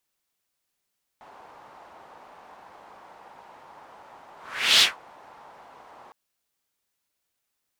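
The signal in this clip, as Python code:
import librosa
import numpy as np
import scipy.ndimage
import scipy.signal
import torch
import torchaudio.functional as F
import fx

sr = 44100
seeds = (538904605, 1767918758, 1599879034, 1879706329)

y = fx.whoosh(sr, seeds[0], length_s=4.91, peak_s=3.6, rise_s=0.47, fall_s=0.17, ends_hz=880.0, peak_hz=3700.0, q=2.5, swell_db=33)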